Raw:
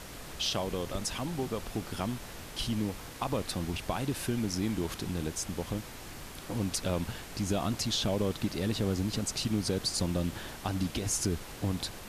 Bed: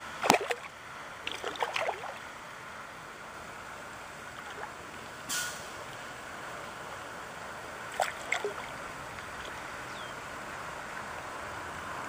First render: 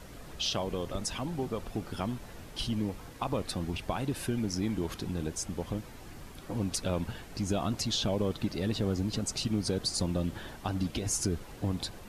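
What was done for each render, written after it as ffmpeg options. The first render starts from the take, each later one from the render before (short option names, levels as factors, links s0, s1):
-af "afftdn=nr=8:nf=-45"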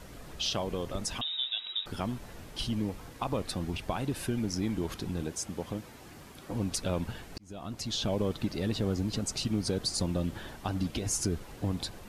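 -filter_complex "[0:a]asettb=1/sr,asplit=3[s0][s1][s2];[s0]atrim=end=1.214[s3];[s1]atrim=start=1.21:end=1.86,asetpts=PTS-STARTPTS,afade=t=in:d=0.004:c=qsin,afade=t=out:st=0.646:d=0.004:c=qsin,lowpass=f=3300:t=q:w=0.5098,lowpass=f=3300:t=q:w=0.6013,lowpass=f=3300:t=q:w=0.9,lowpass=f=3300:t=q:w=2.563,afreqshift=-3900[s4];[s2]atrim=start=1.856[s5];[s3][s4]acrossfade=d=0.004:c1=hsin:c2=qsin[s6];[s6][s5]acrossfade=d=0.004:c1=qsin:c2=hsin,asettb=1/sr,asplit=3[s7][s8][s9];[s7]atrim=end=5.234[s10];[s8]atrim=start=5.23:end=6.51,asetpts=PTS-STARTPTS,afade=t=in:d=0.004:c=qsin,afade=t=out:st=1.276:d=0.004:c=qsin,highpass=f=120:p=1[s11];[s9]atrim=start=6.506[s12];[s10][s11]acrossfade=d=0.004:c1=hsin:c2=qsin[s13];[s13][s12]acrossfade=d=0.004:c1=qsin:c2=hsin,asplit=2[s14][s15];[s14]atrim=end=7.38,asetpts=PTS-STARTPTS,afade=t=out:st=7.376:d=0.004:c=hsin[s16];[s15]atrim=start=7.38,asetpts=PTS-STARTPTS,afade=t=in:d=0.75[s17];[s16][s17]concat=n=2:v=0:a=1"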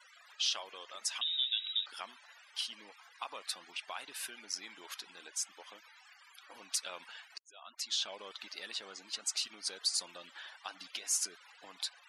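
-af "highpass=1400,afftfilt=real='re*gte(hypot(re,im),0.002)':imag='im*gte(hypot(re,im),0.002)':win_size=1024:overlap=0.75"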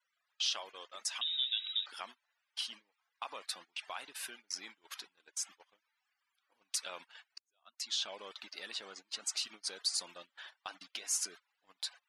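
-af "highshelf=f=3400:g=-2,agate=range=0.0631:threshold=0.00355:ratio=16:detection=peak"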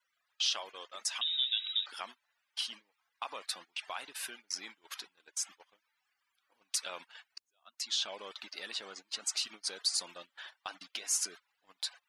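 -af "volume=1.33"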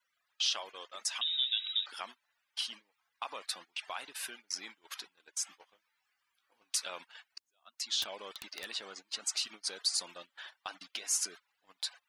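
-filter_complex "[0:a]asettb=1/sr,asplit=3[s0][s1][s2];[s0]atrim=end=5.454[s3];[s1]atrim=start=5.45:end=6.85,asetpts=PTS-STARTPTS,afade=t=in:d=0.004:c=qsin,afade=t=out:st=1.396:d=0.004:c=qsin,asplit=2[s4][s5];[s5]adelay=18,volume=0.398[s6];[s4][s6]amix=inputs=2:normalize=0,atrim=end_sample=61740[s7];[s2]atrim=start=6.846[s8];[s3][s7]acrossfade=d=0.004:c1=hsin:c2=qsin[s9];[s9][s8]acrossfade=d=0.004:c1=qsin:c2=hsin,asettb=1/sr,asplit=3[s10][s11][s12];[s10]atrim=end=8.024[s13];[s11]atrim=start=8.02:end=8.66,asetpts=PTS-STARTPTS,afade=t=in:d=0.004:c=qsin,afade=t=out:st=0.636:d=0.004:c=qsin,aeval=exprs='(mod(29.9*val(0)+1,2)-1)/29.9':c=same[s14];[s12]atrim=start=8.656[s15];[s13][s14]acrossfade=d=0.004:c1=hsin:c2=qsin[s16];[s16][s15]acrossfade=d=0.004:c1=qsin:c2=hsin"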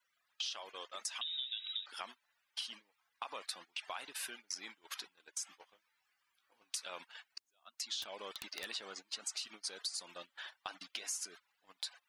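-af "acompressor=threshold=0.0126:ratio=6"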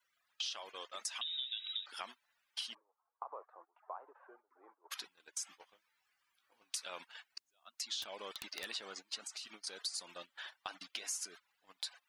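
-filter_complex "[0:a]asplit=3[s0][s1][s2];[s0]afade=t=out:st=2.73:d=0.02[s3];[s1]asuperpass=centerf=660:order=8:qfactor=0.8,afade=t=in:st=2.73:d=0.02,afade=t=out:st=4.9:d=0.02[s4];[s2]afade=t=in:st=4.9:d=0.02[s5];[s3][s4][s5]amix=inputs=3:normalize=0,asettb=1/sr,asplit=3[s6][s7][s8];[s6]atrim=end=9.154[s9];[s7]atrim=start=9.15:end=9.67,asetpts=PTS-STARTPTS,afade=t=in:d=0.004:c=qsin,afade=t=out:st=0.516:d=0.004:c=qsin,acompressor=threshold=0.00891:ratio=6:attack=3.2:release=140:knee=1:detection=peak[s10];[s8]atrim=start=9.666[s11];[s9][s10]acrossfade=d=0.004:c1=hsin:c2=qsin[s12];[s12][s11]acrossfade=d=0.004:c1=qsin:c2=hsin"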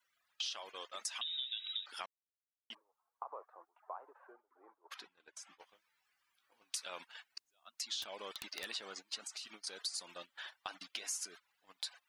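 -filter_complex "[0:a]asettb=1/sr,asplit=3[s0][s1][s2];[s0]atrim=end=4.324[s3];[s1]atrim=start=4.32:end=5.59,asetpts=PTS-STARTPTS,afade=t=in:d=0.004:c=qsin,afade=t=out:st=1.266:d=0.004:c=qsin,lowpass=f=2000:p=1[s4];[s2]atrim=start=5.586[s5];[s3][s4]acrossfade=d=0.004:c1=hsin:c2=qsin[s6];[s6][s5]acrossfade=d=0.004:c1=qsin:c2=hsin,asplit=3[s7][s8][s9];[s7]atrim=end=2.06,asetpts=PTS-STARTPTS,afade=t=out:st=2.056:d=0.004:c=hsin[s10];[s8]atrim=start=2.06:end=2.7,asetpts=PTS-STARTPTS,volume=0[s11];[s9]atrim=start=2.7,asetpts=PTS-STARTPTS,afade=t=in:d=0.004:c=hsin[s12];[s10][s11][s12]concat=n=3:v=0:a=1"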